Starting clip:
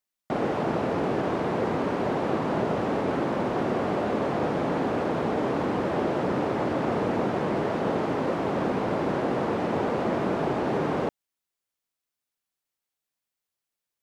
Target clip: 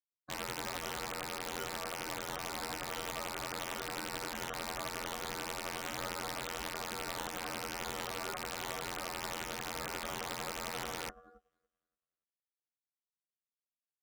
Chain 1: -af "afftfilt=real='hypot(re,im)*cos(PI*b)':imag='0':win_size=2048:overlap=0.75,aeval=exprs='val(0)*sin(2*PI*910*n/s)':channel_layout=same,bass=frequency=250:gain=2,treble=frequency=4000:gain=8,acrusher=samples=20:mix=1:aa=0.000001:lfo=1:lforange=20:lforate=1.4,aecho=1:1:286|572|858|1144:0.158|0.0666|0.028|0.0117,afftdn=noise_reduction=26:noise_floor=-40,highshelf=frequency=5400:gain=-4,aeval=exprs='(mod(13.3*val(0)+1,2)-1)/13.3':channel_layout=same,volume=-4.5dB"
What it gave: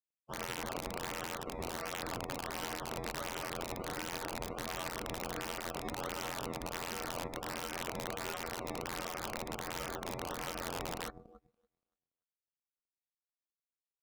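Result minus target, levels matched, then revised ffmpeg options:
sample-and-hold swept by an LFO: distortion +11 dB
-af "afftfilt=real='hypot(re,im)*cos(PI*b)':imag='0':win_size=2048:overlap=0.75,aeval=exprs='val(0)*sin(2*PI*910*n/s)':channel_layout=same,bass=frequency=250:gain=2,treble=frequency=4000:gain=8,acrusher=samples=7:mix=1:aa=0.000001:lfo=1:lforange=7:lforate=1.4,aecho=1:1:286|572|858|1144:0.158|0.0666|0.028|0.0117,afftdn=noise_reduction=26:noise_floor=-40,highshelf=frequency=5400:gain=-4,aeval=exprs='(mod(13.3*val(0)+1,2)-1)/13.3':channel_layout=same,volume=-4.5dB"

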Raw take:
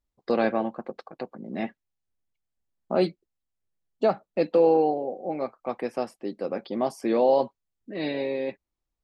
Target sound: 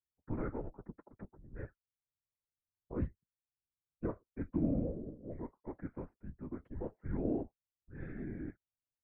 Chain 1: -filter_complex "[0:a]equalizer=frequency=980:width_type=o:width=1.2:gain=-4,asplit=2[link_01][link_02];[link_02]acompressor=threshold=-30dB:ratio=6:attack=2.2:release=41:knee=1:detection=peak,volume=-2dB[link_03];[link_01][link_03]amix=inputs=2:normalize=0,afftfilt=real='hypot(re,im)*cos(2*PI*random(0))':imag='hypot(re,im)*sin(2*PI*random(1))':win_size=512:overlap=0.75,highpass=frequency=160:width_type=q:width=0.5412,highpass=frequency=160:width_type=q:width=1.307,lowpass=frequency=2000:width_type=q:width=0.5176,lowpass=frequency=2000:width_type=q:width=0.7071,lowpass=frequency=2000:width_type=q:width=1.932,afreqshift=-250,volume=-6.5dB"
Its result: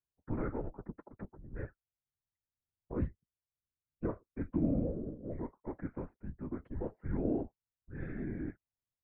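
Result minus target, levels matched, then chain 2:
downward compressor: peak gain reduction +13.5 dB
-af "equalizer=frequency=980:width_type=o:width=1.2:gain=-4,afftfilt=real='hypot(re,im)*cos(2*PI*random(0))':imag='hypot(re,im)*sin(2*PI*random(1))':win_size=512:overlap=0.75,highpass=frequency=160:width_type=q:width=0.5412,highpass=frequency=160:width_type=q:width=1.307,lowpass=frequency=2000:width_type=q:width=0.5176,lowpass=frequency=2000:width_type=q:width=0.7071,lowpass=frequency=2000:width_type=q:width=1.932,afreqshift=-250,volume=-6.5dB"

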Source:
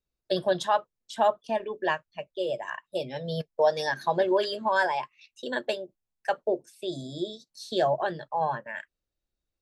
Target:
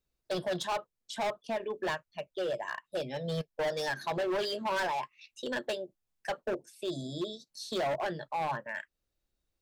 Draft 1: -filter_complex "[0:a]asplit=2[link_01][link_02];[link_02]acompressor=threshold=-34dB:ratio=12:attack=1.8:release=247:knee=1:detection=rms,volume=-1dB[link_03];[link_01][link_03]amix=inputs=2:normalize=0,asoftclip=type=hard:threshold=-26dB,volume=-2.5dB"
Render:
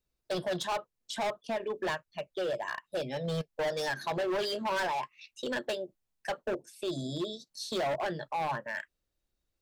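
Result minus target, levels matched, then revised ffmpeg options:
downward compressor: peak gain reduction −9.5 dB
-filter_complex "[0:a]asplit=2[link_01][link_02];[link_02]acompressor=threshold=-44.5dB:ratio=12:attack=1.8:release=247:knee=1:detection=rms,volume=-1dB[link_03];[link_01][link_03]amix=inputs=2:normalize=0,asoftclip=type=hard:threshold=-26dB,volume=-2.5dB"

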